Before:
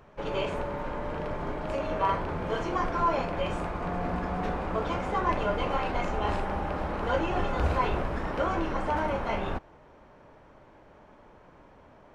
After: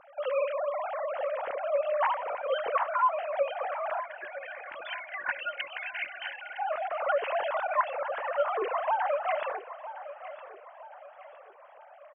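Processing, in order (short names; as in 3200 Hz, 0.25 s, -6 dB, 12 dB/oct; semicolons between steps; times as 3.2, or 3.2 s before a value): sine-wave speech; spectral gain 4–6.59, 370–1400 Hz -21 dB; compressor 3:1, threshold -29 dBFS, peak gain reduction 12 dB; feedback echo 0.96 s, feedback 42%, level -14 dB; gain +3.5 dB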